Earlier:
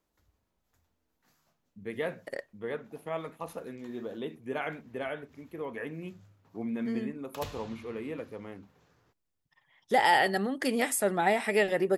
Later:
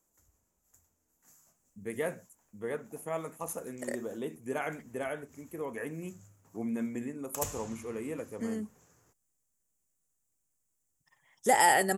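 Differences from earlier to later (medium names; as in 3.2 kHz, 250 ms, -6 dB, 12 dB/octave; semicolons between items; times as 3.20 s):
second voice: entry +1.55 s; master: add resonant high shelf 5.4 kHz +11 dB, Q 3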